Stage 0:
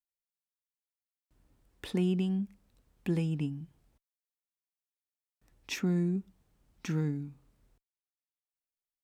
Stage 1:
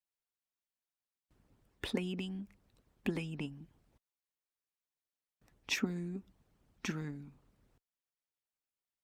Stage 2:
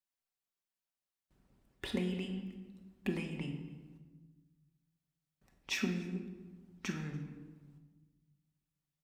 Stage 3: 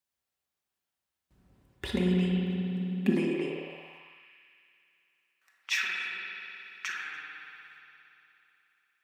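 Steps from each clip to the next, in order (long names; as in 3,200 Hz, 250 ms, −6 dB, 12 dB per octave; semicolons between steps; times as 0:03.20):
harmonic and percussive parts rebalanced harmonic −16 dB; high-shelf EQ 5,000 Hz −6 dB; level +5 dB
single-tap delay 288 ms −24 dB; rectangular room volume 850 cubic metres, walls mixed, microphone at 1.1 metres; level −2.5 dB
spring reverb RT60 3.2 s, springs 55 ms, chirp 25 ms, DRR 0 dB; high-pass filter sweep 60 Hz → 1,500 Hz, 0:02.33–0:04.32; level +4 dB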